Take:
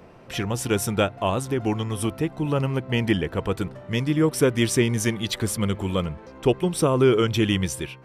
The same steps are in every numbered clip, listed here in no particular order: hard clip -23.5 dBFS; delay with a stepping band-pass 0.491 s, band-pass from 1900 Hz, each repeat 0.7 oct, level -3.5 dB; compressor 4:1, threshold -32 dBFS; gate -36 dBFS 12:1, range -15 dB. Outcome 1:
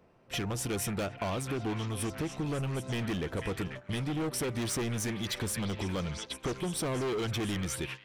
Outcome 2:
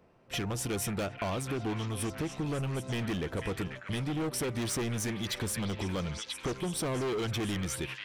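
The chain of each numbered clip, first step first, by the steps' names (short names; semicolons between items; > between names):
hard clip > delay with a stepping band-pass > gate > compressor; hard clip > gate > delay with a stepping band-pass > compressor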